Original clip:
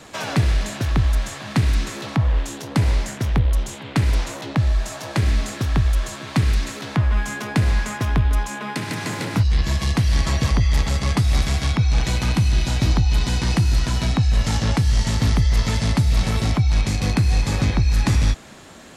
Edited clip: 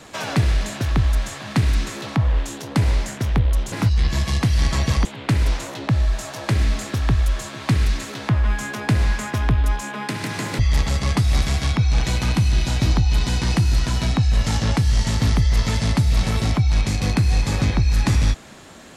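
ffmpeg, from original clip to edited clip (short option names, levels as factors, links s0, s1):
-filter_complex "[0:a]asplit=4[s0][s1][s2][s3];[s0]atrim=end=3.722[s4];[s1]atrim=start=9.258:end=10.592[s5];[s2]atrim=start=3.718:end=9.262[s6];[s3]atrim=start=10.588[s7];[s4][s5]acrossfade=d=0.004:c1=hsin:c2=hsin[s8];[s8][s6]acrossfade=d=0.004:c1=hsin:c2=hsin[s9];[s9][s7]acrossfade=d=0.004:c1=hsin:c2=hsin"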